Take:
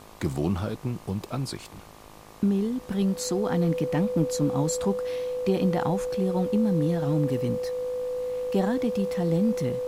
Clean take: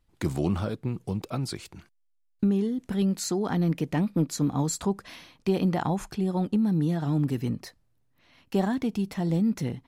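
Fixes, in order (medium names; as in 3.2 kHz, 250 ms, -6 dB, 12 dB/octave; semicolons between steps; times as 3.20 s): de-hum 52.9 Hz, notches 23; band-stop 500 Hz, Q 30; noise print and reduce 21 dB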